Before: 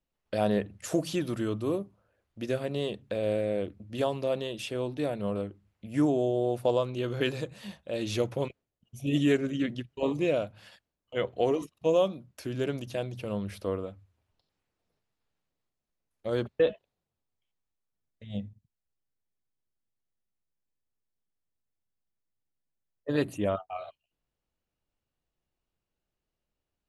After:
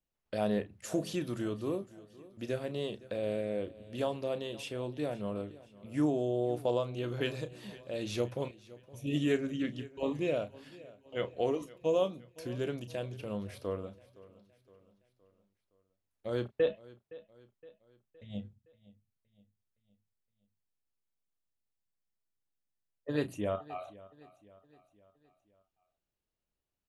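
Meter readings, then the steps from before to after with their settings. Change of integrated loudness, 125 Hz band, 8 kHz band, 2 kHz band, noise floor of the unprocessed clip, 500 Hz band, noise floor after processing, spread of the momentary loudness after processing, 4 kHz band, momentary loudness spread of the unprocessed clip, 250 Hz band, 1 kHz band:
−4.5 dB, −4.5 dB, −4.5 dB, −4.5 dB, below −85 dBFS, −4.5 dB, below −85 dBFS, 17 LU, −4.5 dB, 13 LU, −4.5 dB, −5.0 dB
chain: double-tracking delay 33 ms −12 dB
repeating echo 516 ms, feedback 49%, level −20 dB
level −5 dB

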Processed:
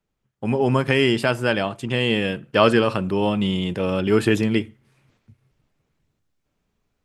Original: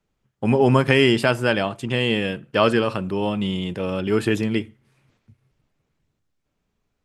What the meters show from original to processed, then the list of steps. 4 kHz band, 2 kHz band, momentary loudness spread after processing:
0.0 dB, −0.5 dB, 7 LU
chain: speech leveller 2 s

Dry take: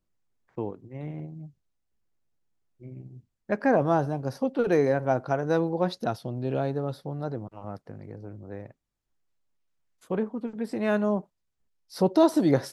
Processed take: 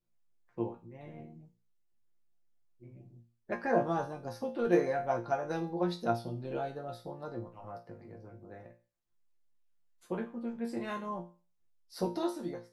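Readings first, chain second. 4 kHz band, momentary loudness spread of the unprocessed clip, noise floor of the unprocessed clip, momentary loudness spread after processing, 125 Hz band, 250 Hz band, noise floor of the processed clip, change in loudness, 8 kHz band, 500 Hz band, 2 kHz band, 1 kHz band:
−7.0 dB, 20 LU, −79 dBFS, 21 LU, −10.5 dB, −9.0 dB, −75 dBFS, −8.0 dB, can't be measured, −8.0 dB, −7.0 dB, −5.5 dB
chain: fade-out on the ending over 0.84 s
resonators tuned to a chord A#2 fifth, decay 0.35 s
harmonic and percussive parts rebalanced percussive +6 dB
level +5.5 dB

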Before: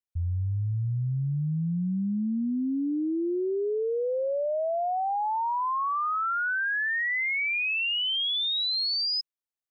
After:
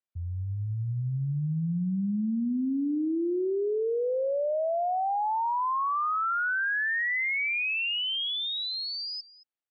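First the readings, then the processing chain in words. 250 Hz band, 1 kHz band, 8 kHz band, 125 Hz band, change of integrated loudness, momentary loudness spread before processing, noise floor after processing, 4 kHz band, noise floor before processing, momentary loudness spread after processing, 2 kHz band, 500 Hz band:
0.0 dB, 0.0 dB, can't be measured, −2.0 dB, −1.0 dB, 5 LU, −55 dBFS, −4.0 dB, below −85 dBFS, 6 LU, −0.5 dB, 0.0 dB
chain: band-pass filter 110–3,300 Hz
on a send: single-tap delay 223 ms −19 dB

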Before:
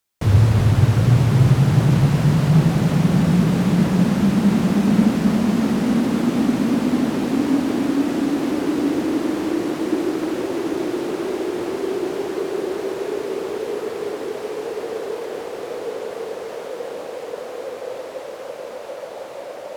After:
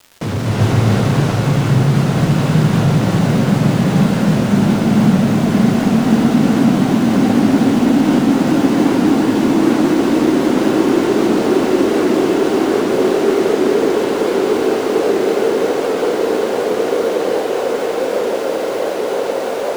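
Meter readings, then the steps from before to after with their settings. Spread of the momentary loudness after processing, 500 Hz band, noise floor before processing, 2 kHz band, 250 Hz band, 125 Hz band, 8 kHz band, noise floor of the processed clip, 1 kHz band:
5 LU, +9.5 dB, −33 dBFS, +8.0 dB, +6.0 dB, +2.0 dB, +7.5 dB, −20 dBFS, +9.0 dB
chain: low-pass filter 10,000 Hz 12 dB per octave
low shelf with overshoot 120 Hz −13 dB, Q 1.5
mains-hum notches 60/120/180 Hz
downward compressor, threshold −17 dBFS, peak gain reduction 9 dB
soft clipping −17.5 dBFS, distortion −16 dB
surface crackle 280 per second −35 dBFS
bit reduction 9 bits
on a send: feedback delay with all-pass diffusion 1,755 ms, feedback 60%, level −5 dB
on the sum: reverb whose tail is shaped and stops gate 430 ms rising, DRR −4.5 dB
wow of a warped record 78 rpm, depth 100 cents
level +4.5 dB

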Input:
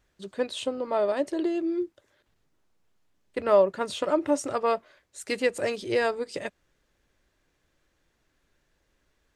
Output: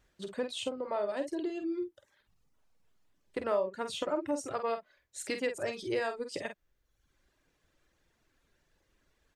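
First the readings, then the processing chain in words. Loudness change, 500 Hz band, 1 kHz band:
−8.0 dB, −8.5 dB, −7.5 dB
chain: reverb reduction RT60 0.89 s
downward compressor 2 to 1, threshold −36 dBFS, peak gain reduction 11.5 dB
double-tracking delay 48 ms −8 dB

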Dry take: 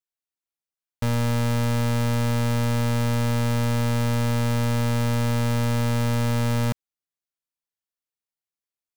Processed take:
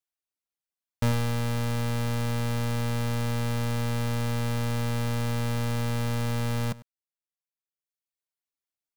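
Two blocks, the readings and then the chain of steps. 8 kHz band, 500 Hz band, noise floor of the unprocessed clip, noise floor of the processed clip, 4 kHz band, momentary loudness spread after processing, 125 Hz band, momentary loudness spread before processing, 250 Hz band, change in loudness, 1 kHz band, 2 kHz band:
−4.5 dB, −5.0 dB, below −85 dBFS, below −85 dBFS, −4.0 dB, 0 LU, −5.0 dB, 1 LU, −6.0 dB, −5.0 dB, −5.0 dB, −4.0 dB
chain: slap from a distant wall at 17 metres, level −12 dB
reverb reduction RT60 1.2 s

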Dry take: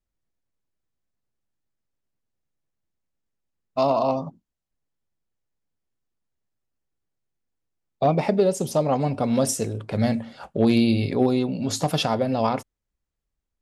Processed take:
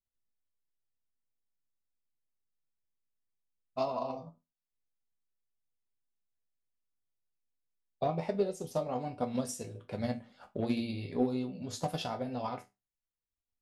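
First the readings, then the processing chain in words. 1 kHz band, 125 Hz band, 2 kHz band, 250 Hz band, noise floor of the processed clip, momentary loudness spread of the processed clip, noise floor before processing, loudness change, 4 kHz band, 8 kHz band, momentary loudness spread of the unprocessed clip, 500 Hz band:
−12.0 dB, −14.0 dB, −13.0 dB, −13.0 dB, below −85 dBFS, 10 LU, −83 dBFS, −13.0 dB, −14.0 dB, −14.5 dB, 8 LU, −12.0 dB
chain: flanger 1.3 Hz, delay 4.1 ms, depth 9.2 ms, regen −66%
resonators tuned to a chord E2 minor, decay 0.22 s
transient designer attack +6 dB, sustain −2 dB

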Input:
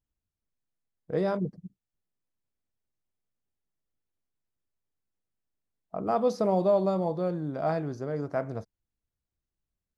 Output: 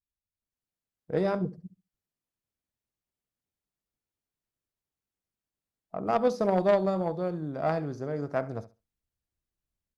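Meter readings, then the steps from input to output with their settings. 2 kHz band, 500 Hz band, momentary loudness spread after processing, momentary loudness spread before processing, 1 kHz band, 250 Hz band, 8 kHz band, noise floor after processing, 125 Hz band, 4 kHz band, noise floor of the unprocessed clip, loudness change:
+4.0 dB, 0.0 dB, 11 LU, 11 LU, +0.5 dB, −0.5 dB, can't be measured, below −85 dBFS, −0.5 dB, +1.5 dB, below −85 dBFS, 0.0 dB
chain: flutter between parallel walls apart 11.8 metres, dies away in 0.27 s
harmonic generator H 3 −13 dB, 5 −23 dB, 7 −32 dB, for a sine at −14 dBFS
automatic gain control gain up to 12 dB
level −7 dB

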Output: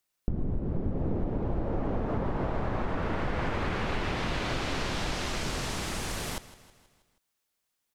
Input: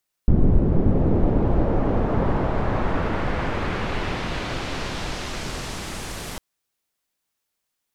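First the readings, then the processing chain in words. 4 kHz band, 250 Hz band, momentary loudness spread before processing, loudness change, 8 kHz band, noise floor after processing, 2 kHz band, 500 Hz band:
−2.5 dB, −9.0 dB, 11 LU, −8.0 dB, −2.0 dB, −81 dBFS, −4.0 dB, −7.5 dB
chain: downward compressor 10 to 1, threshold −24 dBFS, peak gain reduction 14 dB
on a send: repeating echo 160 ms, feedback 54%, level −17 dB
on the sum: level −1.5 dB

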